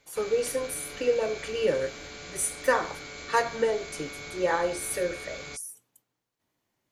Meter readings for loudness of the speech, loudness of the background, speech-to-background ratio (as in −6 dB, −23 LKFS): −29.0 LKFS, −40.0 LKFS, 11.0 dB